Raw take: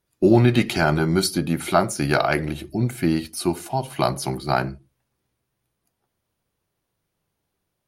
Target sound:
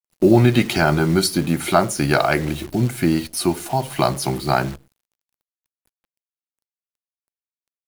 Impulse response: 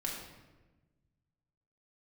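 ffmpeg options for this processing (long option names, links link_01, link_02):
-filter_complex "[0:a]asplit=2[link_01][link_02];[link_02]acompressor=threshold=-31dB:ratio=12,volume=1dB[link_03];[link_01][link_03]amix=inputs=2:normalize=0,acrusher=bits=7:dc=4:mix=0:aa=0.000001,volume=1dB"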